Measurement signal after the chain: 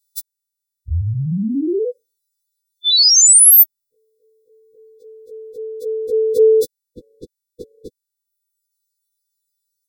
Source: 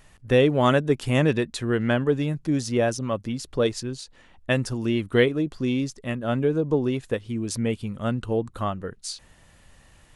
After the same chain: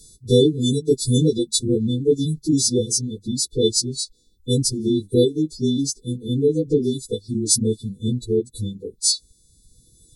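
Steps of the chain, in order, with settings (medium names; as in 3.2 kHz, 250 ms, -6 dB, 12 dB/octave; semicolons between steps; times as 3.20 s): partials quantised in pitch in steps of 2 st; reverb removal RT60 1.4 s; brick-wall FIR band-stop 500–3500 Hz; trim +6.5 dB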